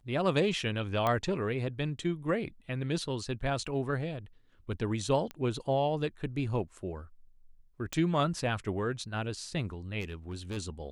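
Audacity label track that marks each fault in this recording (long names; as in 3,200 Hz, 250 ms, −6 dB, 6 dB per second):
1.070000	1.070000	click −16 dBFS
5.310000	5.310000	click −25 dBFS
7.930000	7.930000	click −17 dBFS
10.000000	10.580000	clipping −33.5 dBFS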